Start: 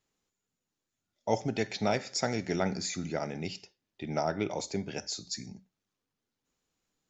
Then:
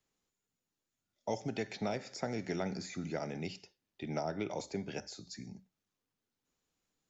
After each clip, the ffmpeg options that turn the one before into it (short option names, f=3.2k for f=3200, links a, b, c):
-filter_complex "[0:a]acrossover=split=100|710|2300[a][b][c][d];[a]acompressor=threshold=-57dB:ratio=4[e];[b]acompressor=threshold=-31dB:ratio=4[f];[c]acompressor=threshold=-41dB:ratio=4[g];[d]acompressor=threshold=-46dB:ratio=4[h];[e][f][g][h]amix=inputs=4:normalize=0,volume=-2.5dB"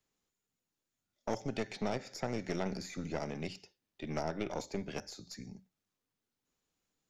-af "aeval=exprs='(tanh(31.6*val(0)+0.8)-tanh(0.8))/31.6':c=same,volume=4.5dB"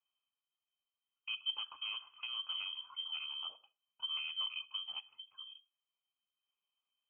-filter_complex "[0:a]asplit=3[a][b][c];[a]bandpass=f=300:t=q:w=8,volume=0dB[d];[b]bandpass=f=870:t=q:w=8,volume=-6dB[e];[c]bandpass=f=2.24k:t=q:w=8,volume=-9dB[f];[d][e][f]amix=inputs=3:normalize=0,lowpass=f=2.9k:t=q:w=0.5098,lowpass=f=2.9k:t=q:w=0.6013,lowpass=f=2.9k:t=q:w=0.9,lowpass=f=2.9k:t=q:w=2.563,afreqshift=-3400,volume=7.5dB"